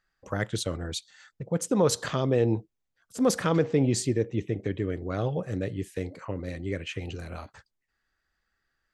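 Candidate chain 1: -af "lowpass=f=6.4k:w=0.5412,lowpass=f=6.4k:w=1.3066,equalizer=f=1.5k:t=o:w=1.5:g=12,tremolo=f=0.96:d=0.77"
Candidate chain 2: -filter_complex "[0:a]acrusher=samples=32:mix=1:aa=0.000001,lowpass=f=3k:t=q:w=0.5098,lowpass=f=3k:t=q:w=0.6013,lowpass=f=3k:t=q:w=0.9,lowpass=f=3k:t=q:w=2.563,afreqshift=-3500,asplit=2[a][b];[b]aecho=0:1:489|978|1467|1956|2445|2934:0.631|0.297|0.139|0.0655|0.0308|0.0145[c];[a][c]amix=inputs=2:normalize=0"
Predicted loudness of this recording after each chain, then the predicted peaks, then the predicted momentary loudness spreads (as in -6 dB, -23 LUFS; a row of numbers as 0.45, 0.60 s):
-30.5, -24.0 LUFS; -8.5, -7.0 dBFS; 15, 14 LU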